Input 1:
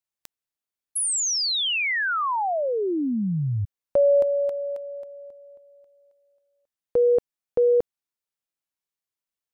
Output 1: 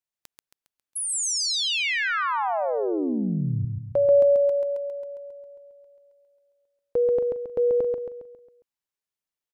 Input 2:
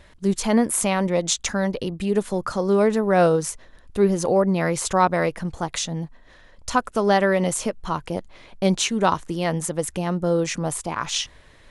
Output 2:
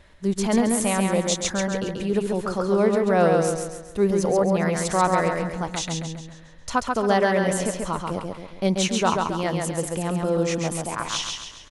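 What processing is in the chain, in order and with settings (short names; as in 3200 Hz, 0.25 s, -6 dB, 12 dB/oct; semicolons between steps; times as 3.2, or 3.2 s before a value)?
high shelf 9000 Hz -3 dB; feedback echo 0.136 s, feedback 45%, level -3.5 dB; gain -2.5 dB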